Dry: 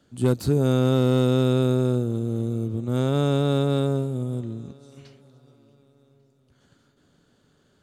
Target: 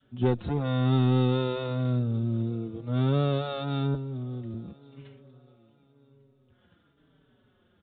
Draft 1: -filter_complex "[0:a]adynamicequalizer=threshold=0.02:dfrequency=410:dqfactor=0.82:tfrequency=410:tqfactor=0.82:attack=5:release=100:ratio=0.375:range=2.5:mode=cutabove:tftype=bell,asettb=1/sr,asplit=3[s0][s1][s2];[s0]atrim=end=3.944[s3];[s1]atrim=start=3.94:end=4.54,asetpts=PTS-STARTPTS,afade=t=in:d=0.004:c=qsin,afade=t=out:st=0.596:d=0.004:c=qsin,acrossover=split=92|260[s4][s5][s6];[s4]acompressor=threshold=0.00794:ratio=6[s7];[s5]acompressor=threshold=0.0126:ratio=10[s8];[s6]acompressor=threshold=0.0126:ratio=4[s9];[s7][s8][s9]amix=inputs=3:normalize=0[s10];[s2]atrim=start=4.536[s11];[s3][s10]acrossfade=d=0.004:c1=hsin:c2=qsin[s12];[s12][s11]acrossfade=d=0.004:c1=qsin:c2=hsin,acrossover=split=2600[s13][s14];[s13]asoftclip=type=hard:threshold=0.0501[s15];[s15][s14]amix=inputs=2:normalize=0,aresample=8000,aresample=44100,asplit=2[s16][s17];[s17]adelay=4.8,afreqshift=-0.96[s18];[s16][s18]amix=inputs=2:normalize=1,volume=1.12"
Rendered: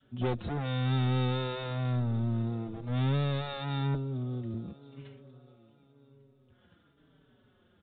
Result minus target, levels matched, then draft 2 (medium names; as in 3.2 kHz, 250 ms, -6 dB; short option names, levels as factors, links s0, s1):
hard clipper: distortion +11 dB
-filter_complex "[0:a]adynamicequalizer=threshold=0.02:dfrequency=410:dqfactor=0.82:tfrequency=410:tqfactor=0.82:attack=5:release=100:ratio=0.375:range=2.5:mode=cutabove:tftype=bell,asettb=1/sr,asplit=3[s0][s1][s2];[s0]atrim=end=3.944[s3];[s1]atrim=start=3.94:end=4.54,asetpts=PTS-STARTPTS,afade=t=in:d=0.004:c=qsin,afade=t=out:st=0.596:d=0.004:c=qsin,acrossover=split=92|260[s4][s5][s6];[s4]acompressor=threshold=0.00794:ratio=6[s7];[s5]acompressor=threshold=0.0126:ratio=10[s8];[s6]acompressor=threshold=0.0126:ratio=4[s9];[s7][s8][s9]amix=inputs=3:normalize=0[s10];[s2]atrim=start=4.536[s11];[s3][s10]acrossfade=d=0.004:c1=hsin:c2=qsin[s12];[s12][s11]acrossfade=d=0.004:c1=qsin:c2=hsin,acrossover=split=2600[s13][s14];[s13]asoftclip=type=hard:threshold=0.141[s15];[s15][s14]amix=inputs=2:normalize=0,aresample=8000,aresample=44100,asplit=2[s16][s17];[s17]adelay=4.8,afreqshift=-0.96[s18];[s16][s18]amix=inputs=2:normalize=1,volume=1.12"